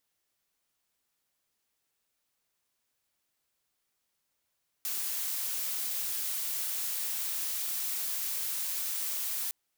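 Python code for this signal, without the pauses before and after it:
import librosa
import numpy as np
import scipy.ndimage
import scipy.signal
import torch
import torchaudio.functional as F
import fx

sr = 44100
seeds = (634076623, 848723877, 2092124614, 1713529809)

y = fx.noise_colour(sr, seeds[0], length_s=4.66, colour='blue', level_db=-33.5)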